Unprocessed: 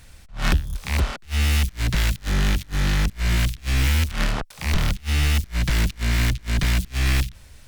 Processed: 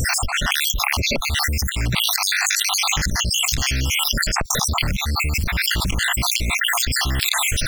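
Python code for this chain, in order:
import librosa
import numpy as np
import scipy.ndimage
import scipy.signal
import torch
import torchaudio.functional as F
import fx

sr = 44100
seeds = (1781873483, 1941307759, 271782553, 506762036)

y = fx.spec_dropout(x, sr, seeds[0], share_pct=68)
y = fx.low_shelf(y, sr, hz=72.0, db=-6.5)
y = fx.rider(y, sr, range_db=5, speed_s=0.5)
y = fx.dynamic_eq(y, sr, hz=6400.0, q=1.6, threshold_db=-53.0, ratio=4.0, max_db=8, at=(2.38, 4.68), fade=0.02)
y = fx.env_flatten(y, sr, amount_pct=100)
y = F.gain(torch.from_numpy(y), -1.0).numpy()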